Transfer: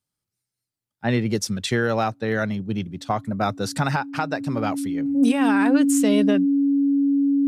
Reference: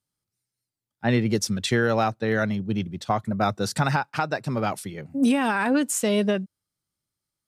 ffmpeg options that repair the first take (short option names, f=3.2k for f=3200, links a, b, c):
-af "bandreject=f=280:w=30"